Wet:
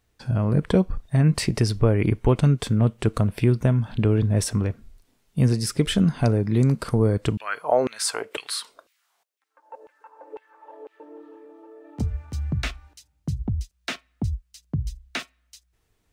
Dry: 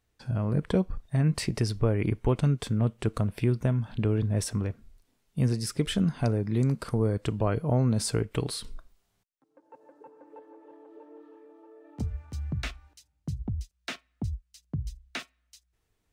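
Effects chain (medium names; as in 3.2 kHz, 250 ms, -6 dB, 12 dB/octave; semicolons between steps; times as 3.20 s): 7.37–11.00 s: LFO high-pass saw down 2 Hz 380–2600 Hz; trim +6 dB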